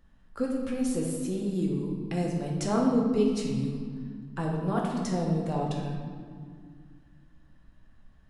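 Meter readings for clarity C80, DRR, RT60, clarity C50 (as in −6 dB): 4.0 dB, −2.0 dB, 2.1 s, 1.5 dB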